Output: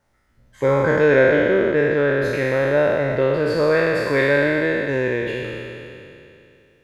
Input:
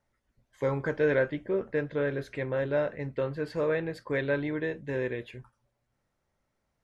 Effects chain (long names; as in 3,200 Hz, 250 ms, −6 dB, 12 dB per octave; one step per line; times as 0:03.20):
peak hold with a decay on every bin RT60 2.72 s
level +8 dB